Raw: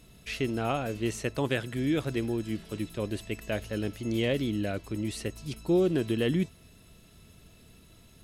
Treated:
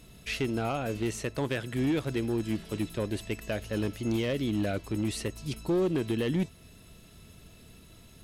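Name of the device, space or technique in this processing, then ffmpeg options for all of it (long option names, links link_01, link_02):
limiter into clipper: -af "alimiter=limit=-21dB:level=0:latency=1:release=282,asoftclip=type=hard:threshold=-25dB,volume=2.5dB"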